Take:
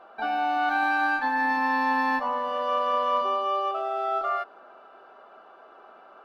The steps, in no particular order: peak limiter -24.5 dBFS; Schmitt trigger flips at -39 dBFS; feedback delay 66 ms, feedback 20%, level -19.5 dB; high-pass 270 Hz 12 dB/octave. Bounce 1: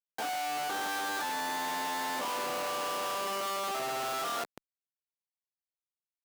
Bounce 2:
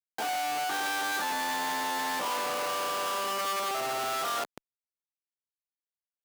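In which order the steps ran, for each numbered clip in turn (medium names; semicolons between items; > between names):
feedback delay > peak limiter > Schmitt trigger > high-pass; feedback delay > Schmitt trigger > high-pass > peak limiter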